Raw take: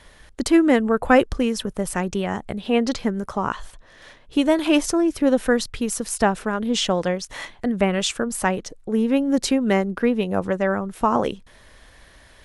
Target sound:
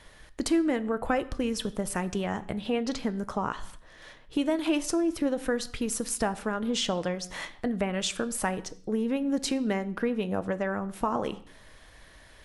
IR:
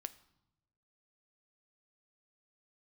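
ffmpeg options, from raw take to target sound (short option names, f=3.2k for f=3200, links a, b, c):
-filter_complex "[0:a]acompressor=threshold=-22dB:ratio=3[a];[1:a]atrim=start_sample=2205,afade=t=out:st=0.33:d=0.01,atrim=end_sample=14994[b];[a][b]afir=irnorm=-1:irlink=0"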